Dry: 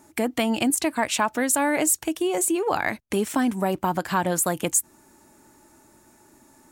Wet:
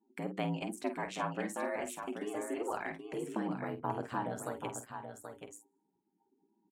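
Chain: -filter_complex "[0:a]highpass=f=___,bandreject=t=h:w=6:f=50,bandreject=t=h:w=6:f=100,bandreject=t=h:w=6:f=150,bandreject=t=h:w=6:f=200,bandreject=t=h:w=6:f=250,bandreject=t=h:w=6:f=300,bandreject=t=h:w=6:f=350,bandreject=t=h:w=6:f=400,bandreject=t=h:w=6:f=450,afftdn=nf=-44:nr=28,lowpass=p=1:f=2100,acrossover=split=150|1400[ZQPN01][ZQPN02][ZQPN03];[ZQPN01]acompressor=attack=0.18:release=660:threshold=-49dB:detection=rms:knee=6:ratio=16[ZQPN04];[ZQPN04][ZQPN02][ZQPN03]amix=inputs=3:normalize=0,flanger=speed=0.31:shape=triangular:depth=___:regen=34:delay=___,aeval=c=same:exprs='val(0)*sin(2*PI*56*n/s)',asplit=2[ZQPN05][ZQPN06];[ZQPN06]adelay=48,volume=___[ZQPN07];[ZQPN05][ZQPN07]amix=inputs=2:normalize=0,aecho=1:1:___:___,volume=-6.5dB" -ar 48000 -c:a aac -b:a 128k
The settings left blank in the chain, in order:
59, 6.3, 2.7, -9.5dB, 780, 0.422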